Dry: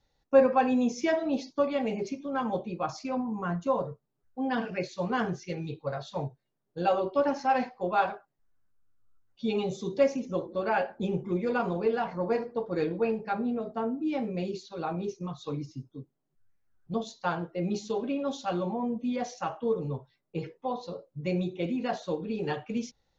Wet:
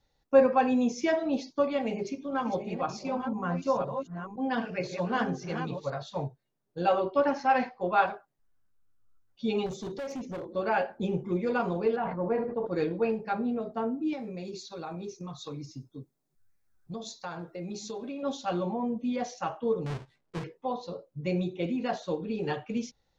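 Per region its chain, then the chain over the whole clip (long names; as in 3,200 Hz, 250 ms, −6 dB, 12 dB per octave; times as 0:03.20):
0:01.79–0:06.03: delay that plays each chunk backwards 514 ms, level −7 dB + mains-hum notches 50/100/150/200/250/300/350/400/450 Hz
0:06.88–0:08.06: Bessel low-pass filter 6,000 Hz + dynamic equaliser 1,800 Hz, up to +4 dB, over −40 dBFS, Q 0.86
0:09.66–0:10.55: downward compressor 10 to 1, threshold −27 dBFS + gain into a clipping stage and back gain 33 dB
0:11.96–0:12.67: high-frequency loss of the air 500 metres + level that may fall only so fast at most 55 dB per second
0:14.13–0:18.23: high-shelf EQ 3,300 Hz +7.5 dB + notch filter 3,000 Hz, Q 6.3 + downward compressor 3 to 1, threshold −36 dBFS
0:19.86–0:20.44: each half-wave held at its own peak + downward compressor 2 to 1, threshold −36 dBFS + high-frequency loss of the air 87 metres
whole clip: no processing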